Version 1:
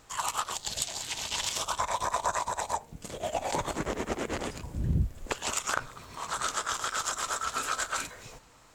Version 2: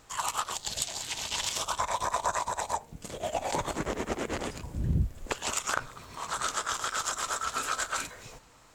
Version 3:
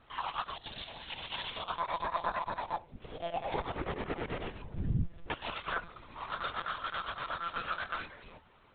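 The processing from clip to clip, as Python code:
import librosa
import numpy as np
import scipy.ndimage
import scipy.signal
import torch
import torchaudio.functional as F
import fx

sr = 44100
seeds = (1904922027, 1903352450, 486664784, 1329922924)

y1 = x
y2 = fx.lpc_monotone(y1, sr, seeds[0], pitch_hz=170.0, order=16)
y2 = F.gain(torch.from_numpy(y2), -4.0).numpy()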